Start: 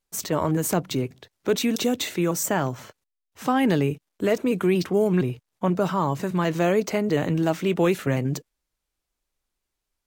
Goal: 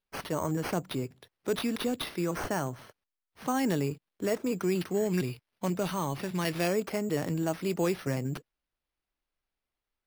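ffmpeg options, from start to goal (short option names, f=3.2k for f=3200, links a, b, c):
-filter_complex "[0:a]asettb=1/sr,asplit=3[a][b][c];[a]atrim=end=4.904[d];[b]atrim=start=4.9:end=6.68,asetpts=PTS-STARTPTS,afade=t=in:d=0.004:c=qsin,afade=t=out:st=1.776:d=0.004:c=qsin,highshelf=f=1.7k:t=q:w=1.5:g=6.5[e];[c]atrim=start=6.676[f];[d][e]acrossfade=d=0.004:c1=hsin:c2=qsin[g];[g][f]acrossfade=d=0.004:c1=qsin:c2=hsin,acrusher=samples=6:mix=1:aa=0.000001,volume=-7.5dB"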